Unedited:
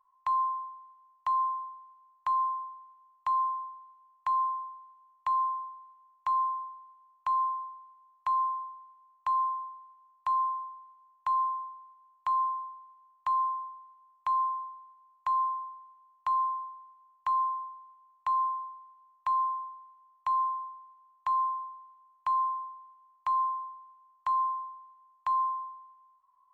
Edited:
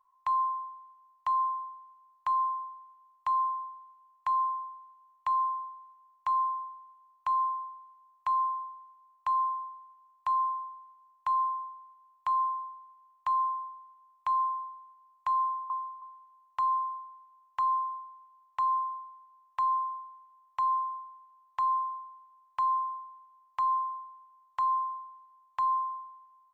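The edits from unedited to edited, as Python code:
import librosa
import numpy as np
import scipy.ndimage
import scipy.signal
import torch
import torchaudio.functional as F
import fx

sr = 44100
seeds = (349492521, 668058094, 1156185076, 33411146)

y = fx.edit(x, sr, fx.duplicate(start_s=17.47, length_s=0.32, to_s=15.7), tone=tone)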